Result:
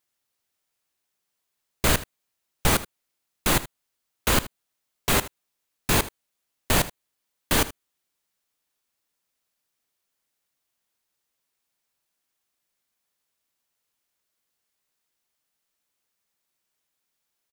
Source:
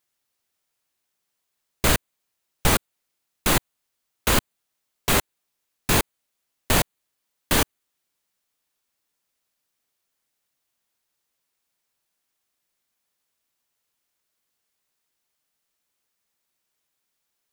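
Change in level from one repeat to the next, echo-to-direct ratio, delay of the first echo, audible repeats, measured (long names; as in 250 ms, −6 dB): repeats not evenly spaced, −16.5 dB, 78 ms, 1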